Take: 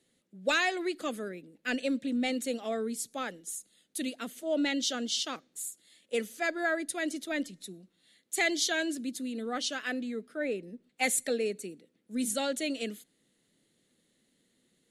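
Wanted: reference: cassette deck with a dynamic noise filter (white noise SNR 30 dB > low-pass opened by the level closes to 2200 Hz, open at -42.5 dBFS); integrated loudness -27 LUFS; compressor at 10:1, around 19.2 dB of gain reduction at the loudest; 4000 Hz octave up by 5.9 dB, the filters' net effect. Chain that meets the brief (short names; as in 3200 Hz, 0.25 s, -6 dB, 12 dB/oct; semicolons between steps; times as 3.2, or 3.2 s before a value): bell 4000 Hz +7 dB; compressor 10:1, threshold -41 dBFS; white noise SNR 30 dB; low-pass opened by the level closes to 2200 Hz, open at -42.5 dBFS; gain +17.5 dB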